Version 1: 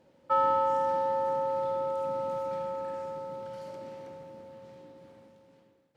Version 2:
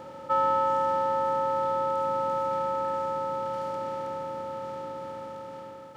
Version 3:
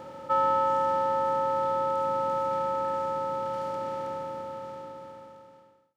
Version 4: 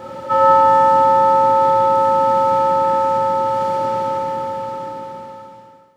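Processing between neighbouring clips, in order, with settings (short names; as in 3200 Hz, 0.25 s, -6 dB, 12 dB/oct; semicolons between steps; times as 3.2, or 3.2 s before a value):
per-bin compression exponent 0.4
ending faded out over 1.87 s
non-linear reverb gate 0.38 s falling, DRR -4 dB; gain +6.5 dB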